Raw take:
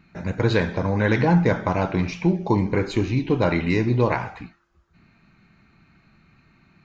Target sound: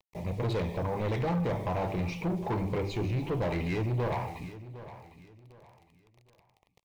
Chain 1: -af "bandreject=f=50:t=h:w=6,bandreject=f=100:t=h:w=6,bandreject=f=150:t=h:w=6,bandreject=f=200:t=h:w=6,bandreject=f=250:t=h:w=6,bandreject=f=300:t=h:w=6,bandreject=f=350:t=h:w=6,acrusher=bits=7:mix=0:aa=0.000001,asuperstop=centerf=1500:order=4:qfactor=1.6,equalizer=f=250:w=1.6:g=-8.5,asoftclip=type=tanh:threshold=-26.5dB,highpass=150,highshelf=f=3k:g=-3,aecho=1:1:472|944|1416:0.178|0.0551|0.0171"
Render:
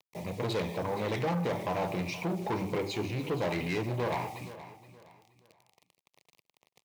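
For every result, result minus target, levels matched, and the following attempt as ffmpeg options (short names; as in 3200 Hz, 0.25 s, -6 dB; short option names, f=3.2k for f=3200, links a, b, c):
echo 0.286 s early; 8000 Hz band +7.5 dB; 125 Hz band -3.5 dB
-af "bandreject=f=50:t=h:w=6,bandreject=f=100:t=h:w=6,bandreject=f=150:t=h:w=6,bandreject=f=200:t=h:w=6,bandreject=f=250:t=h:w=6,bandreject=f=300:t=h:w=6,bandreject=f=350:t=h:w=6,acrusher=bits=7:mix=0:aa=0.000001,asuperstop=centerf=1500:order=4:qfactor=1.6,equalizer=f=250:w=1.6:g=-8.5,asoftclip=type=tanh:threshold=-26.5dB,highpass=150,highshelf=f=3k:g=-3,aecho=1:1:758|1516|2274:0.178|0.0551|0.0171"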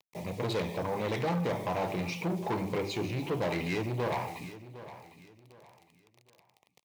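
8000 Hz band +7.5 dB; 125 Hz band -3.5 dB
-af "bandreject=f=50:t=h:w=6,bandreject=f=100:t=h:w=6,bandreject=f=150:t=h:w=6,bandreject=f=200:t=h:w=6,bandreject=f=250:t=h:w=6,bandreject=f=300:t=h:w=6,bandreject=f=350:t=h:w=6,acrusher=bits=7:mix=0:aa=0.000001,asuperstop=centerf=1500:order=4:qfactor=1.6,equalizer=f=250:w=1.6:g=-8.5,asoftclip=type=tanh:threshold=-26.5dB,highpass=150,highshelf=f=3k:g=-10.5,aecho=1:1:758|1516|2274:0.178|0.0551|0.0171"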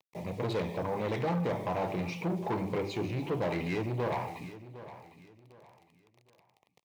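125 Hz band -3.5 dB
-af "bandreject=f=50:t=h:w=6,bandreject=f=100:t=h:w=6,bandreject=f=150:t=h:w=6,bandreject=f=200:t=h:w=6,bandreject=f=250:t=h:w=6,bandreject=f=300:t=h:w=6,bandreject=f=350:t=h:w=6,acrusher=bits=7:mix=0:aa=0.000001,asuperstop=centerf=1500:order=4:qfactor=1.6,equalizer=f=250:w=1.6:g=-8.5,asoftclip=type=tanh:threshold=-26.5dB,highshelf=f=3k:g=-10.5,aecho=1:1:758|1516|2274:0.178|0.0551|0.0171"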